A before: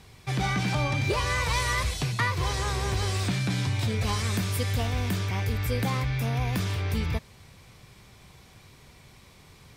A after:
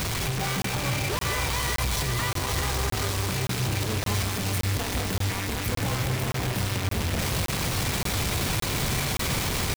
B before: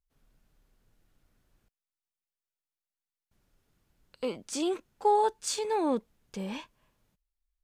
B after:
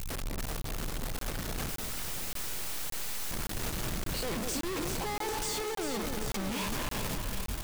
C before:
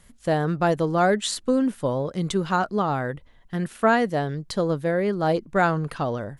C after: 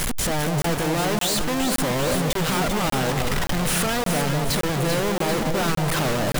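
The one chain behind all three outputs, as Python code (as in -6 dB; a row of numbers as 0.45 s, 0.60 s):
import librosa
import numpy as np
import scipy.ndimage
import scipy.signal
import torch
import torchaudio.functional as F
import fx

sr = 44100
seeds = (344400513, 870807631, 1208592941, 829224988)

y = np.sign(x) * np.sqrt(np.mean(np.square(x)))
y = fx.echo_alternate(y, sr, ms=196, hz=980.0, feedback_pct=79, wet_db=-4.5)
y = fx.buffer_crackle(y, sr, first_s=0.62, period_s=0.57, block=1024, kind='zero')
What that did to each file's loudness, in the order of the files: +1.0 LU, -4.0 LU, +1.5 LU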